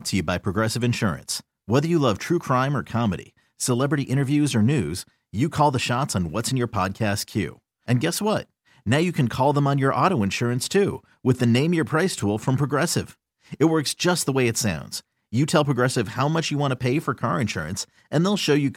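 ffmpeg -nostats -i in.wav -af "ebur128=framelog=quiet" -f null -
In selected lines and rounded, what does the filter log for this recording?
Integrated loudness:
  I:         -22.9 LUFS
  Threshold: -33.2 LUFS
Loudness range:
  LRA:         2.2 LU
  Threshold: -43.1 LUFS
  LRA low:   -24.1 LUFS
  LRA high:  -21.8 LUFS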